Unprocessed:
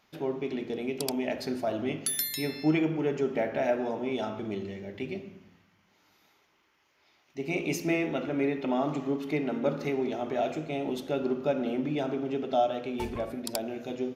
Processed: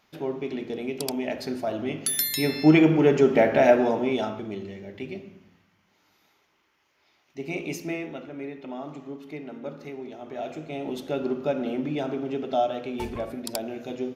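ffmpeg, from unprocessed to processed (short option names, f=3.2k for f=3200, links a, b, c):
-af "volume=19.5dB,afade=t=in:st=1.92:d=0.99:silence=0.375837,afade=t=out:st=3.72:d=0.74:silence=0.316228,afade=t=out:st=7.41:d=0.89:silence=0.398107,afade=t=in:st=10.19:d=0.92:silence=0.334965"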